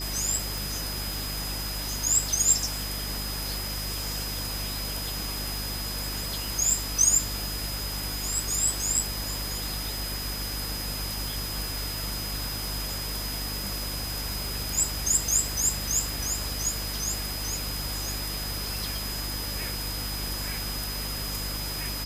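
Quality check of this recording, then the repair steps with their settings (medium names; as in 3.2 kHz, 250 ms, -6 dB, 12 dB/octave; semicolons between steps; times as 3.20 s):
crackle 25 per s -34 dBFS
hum 50 Hz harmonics 6 -36 dBFS
whine 5 kHz -35 dBFS
0.58 s: pop
16.14 s: pop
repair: de-click; de-hum 50 Hz, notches 6; band-stop 5 kHz, Q 30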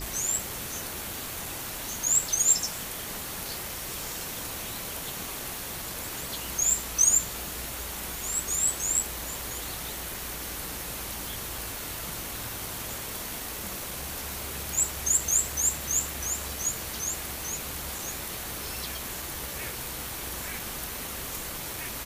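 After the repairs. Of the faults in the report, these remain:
nothing left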